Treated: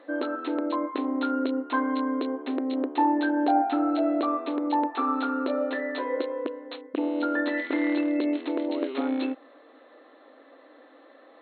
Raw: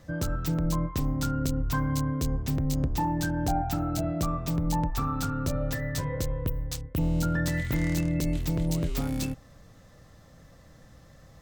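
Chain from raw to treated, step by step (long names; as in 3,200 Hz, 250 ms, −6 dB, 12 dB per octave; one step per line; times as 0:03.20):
linear-phase brick-wall band-pass 250–4,300 Hz
high-shelf EQ 2,400 Hz −10.5 dB
level +8 dB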